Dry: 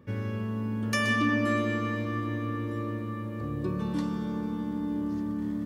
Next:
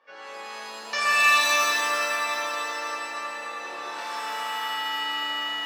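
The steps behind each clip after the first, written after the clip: Chebyshev band-pass 660–5300 Hz, order 3; shimmer reverb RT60 2.2 s, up +7 st, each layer -2 dB, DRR -9 dB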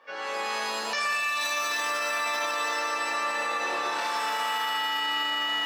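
in parallel at +0.5 dB: negative-ratio compressor -28 dBFS; on the sum: limiter -20 dBFS, peak gain reduction 12 dB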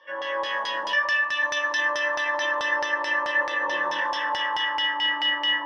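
ripple EQ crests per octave 1.2, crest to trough 18 dB; LFO low-pass saw down 4.6 Hz 830–4900 Hz; gain -3.5 dB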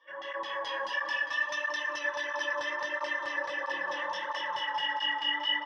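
on a send: bouncing-ball echo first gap 0.24 s, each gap 0.85×, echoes 5; on the sum: tape flanging out of phase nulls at 1.5 Hz, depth 5.7 ms; gain -6.5 dB

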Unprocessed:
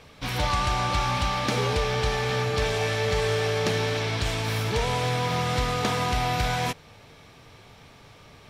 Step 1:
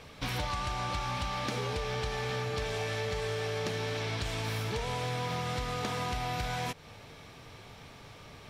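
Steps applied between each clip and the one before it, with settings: compressor 6:1, threshold -31 dBFS, peak gain reduction 10.5 dB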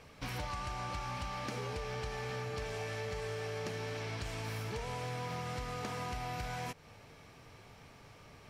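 bell 3600 Hz -6.5 dB 0.36 oct; gain -5.5 dB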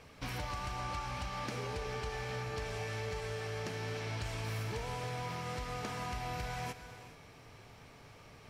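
reverb, pre-delay 3 ms, DRR 9 dB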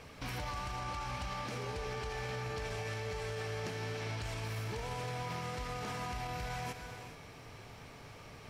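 limiter -35 dBFS, peak gain reduction 8 dB; gain +4 dB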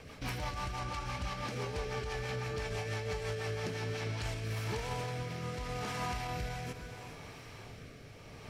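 rotary speaker horn 6 Hz, later 0.75 Hz, at 3.73; gain +4 dB

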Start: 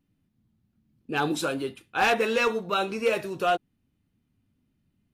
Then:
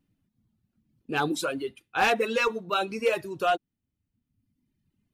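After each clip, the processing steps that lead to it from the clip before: reverb removal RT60 1.2 s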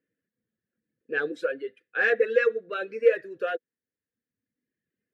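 double band-pass 910 Hz, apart 1.8 oct; gain +8 dB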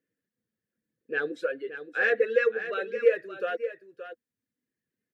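echo 0.573 s -11 dB; gain -1.5 dB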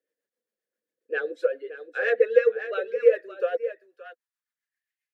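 high-pass sweep 530 Hz -> 2300 Hz, 3.67–5.05; rotary speaker horn 7.5 Hz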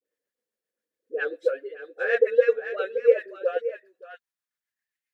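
dispersion highs, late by 55 ms, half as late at 710 Hz

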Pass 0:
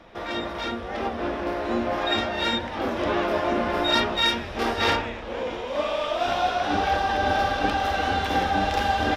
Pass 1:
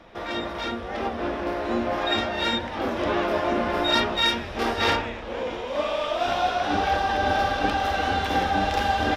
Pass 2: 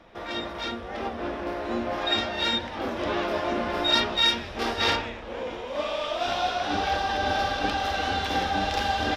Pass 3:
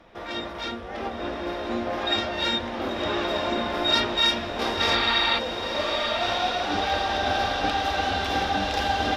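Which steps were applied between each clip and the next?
nothing audible
dynamic EQ 4500 Hz, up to +6 dB, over -39 dBFS, Q 0.9; gain -3.5 dB
spectral repair 4.88–5.36, 670–4700 Hz before; diffused feedback echo 0.998 s, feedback 60%, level -6.5 dB

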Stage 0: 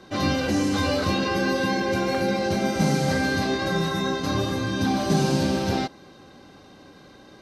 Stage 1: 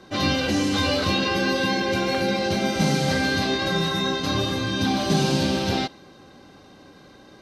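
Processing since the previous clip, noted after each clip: dynamic EQ 3300 Hz, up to +7 dB, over -46 dBFS, Q 1.2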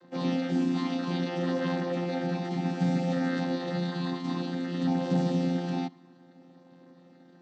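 chord vocoder bare fifth, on F3; gain -5 dB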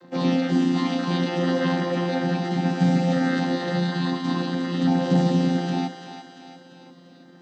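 thinning echo 0.343 s, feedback 56%, high-pass 480 Hz, level -8 dB; gain +7 dB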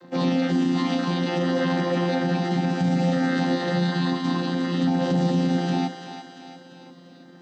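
limiter -16 dBFS, peak gain reduction 7 dB; gain +1.5 dB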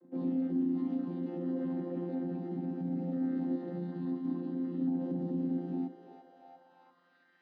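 band-pass sweep 290 Hz -> 2000 Hz, 5.82–7.39; gain -7 dB

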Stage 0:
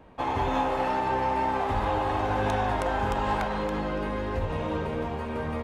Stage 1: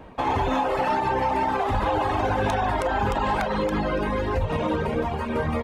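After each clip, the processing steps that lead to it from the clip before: reverb removal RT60 1.1 s; limiter -23.5 dBFS, peak gain reduction 6 dB; gain +8.5 dB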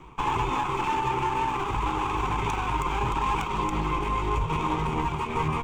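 minimum comb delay 0.86 ms; ripple EQ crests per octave 0.7, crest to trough 11 dB; vocal rider 2 s; gain -3.5 dB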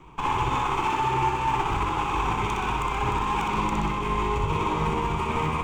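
limiter -22 dBFS, peak gain reduction 7 dB; flutter echo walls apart 10.7 m, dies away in 0.9 s; upward expander 1.5:1, over -40 dBFS; gain +5 dB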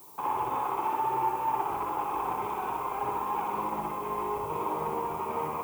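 band-pass 630 Hz, Q 1.5; added noise violet -52 dBFS

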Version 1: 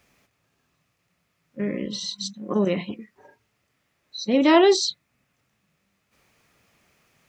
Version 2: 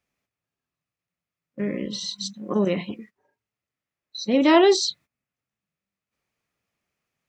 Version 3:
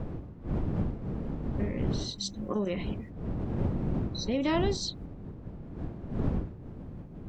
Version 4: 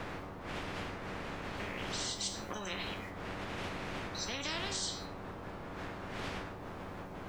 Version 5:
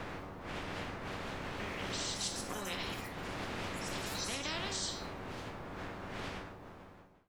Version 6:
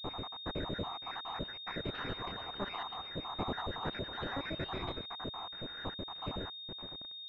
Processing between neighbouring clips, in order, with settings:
gate -45 dBFS, range -18 dB
wind noise 200 Hz -24 dBFS; compressor 2.5:1, threshold -28 dBFS, peak gain reduction 13 dB; gain -2 dB
resonator 95 Hz, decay 0.29 s, harmonics all, mix 70%; spectral compressor 4:1; gain -1.5 dB
ending faded out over 1.13 s; echoes that change speed 0.705 s, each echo +5 st, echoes 3, each echo -6 dB; gain -1 dB
random spectral dropouts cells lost 72%; bit-crush 9-bit; pulse-width modulation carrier 3700 Hz; gain +7 dB

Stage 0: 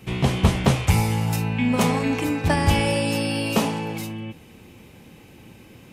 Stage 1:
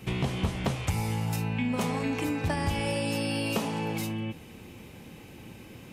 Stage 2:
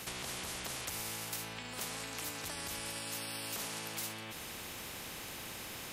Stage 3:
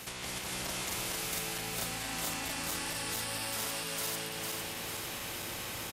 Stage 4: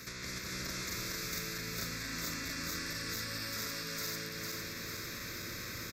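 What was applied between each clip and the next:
compressor 4:1, threshold -27 dBFS, peak gain reduction 13.5 dB
limiter -23 dBFS, peak gain reduction 8 dB; spectral compressor 4:1; gain +1.5 dB
regenerating reverse delay 0.226 s, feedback 75%, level -0.5 dB; doubler 34 ms -13 dB
fixed phaser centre 3000 Hz, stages 6; gain +1 dB

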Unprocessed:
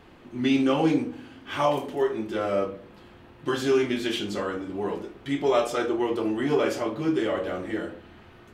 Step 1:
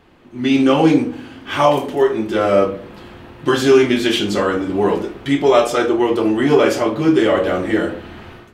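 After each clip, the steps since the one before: AGC gain up to 15 dB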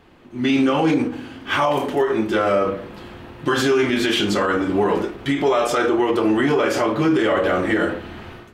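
dynamic EQ 1400 Hz, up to +5 dB, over -32 dBFS, Q 0.88; limiter -10 dBFS, peak gain reduction 11 dB; ending taper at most 150 dB/s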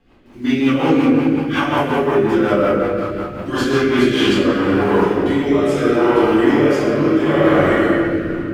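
in parallel at -11.5 dB: bit-crush 6-bit; on the sum: reverb RT60 2.8 s, pre-delay 4 ms, DRR -12.5 dB; rotary speaker horn 5.5 Hz, later 0.75 Hz, at 3.71; gain -9.5 dB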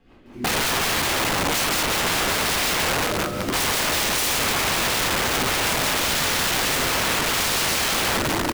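wrapped overs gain 17.5 dB; echo 0.754 s -14.5 dB

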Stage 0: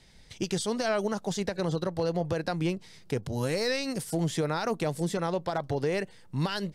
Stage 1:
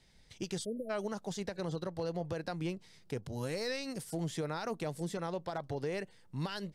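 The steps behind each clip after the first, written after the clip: spectral delete 0.65–0.9, 660–9500 Hz; gain -8 dB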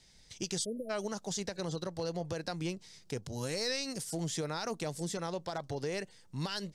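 bell 6300 Hz +10 dB 1.4 oct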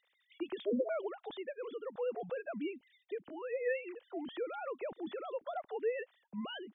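sine-wave speech; gain -2 dB

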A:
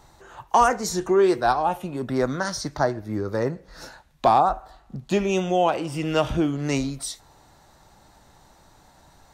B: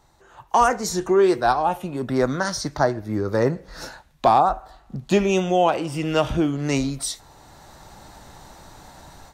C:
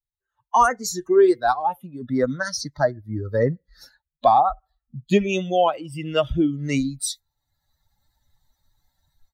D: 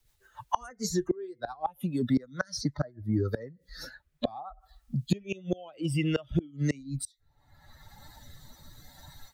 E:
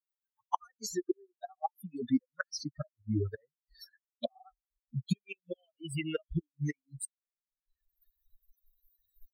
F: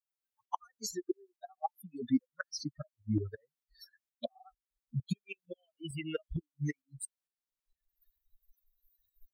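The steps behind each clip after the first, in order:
AGC gain up to 15.5 dB; gain -6 dB
per-bin expansion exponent 2; gain +3.5 dB
flipped gate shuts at -15 dBFS, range -28 dB; rotary speaker horn 7 Hz, later 0.65 Hz, at 2.44; three-band squash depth 70%; gain +4.5 dB
per-bin expansion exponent 3
tremolo saw up 2.2 Hz, depth 60%; gain +1 dB

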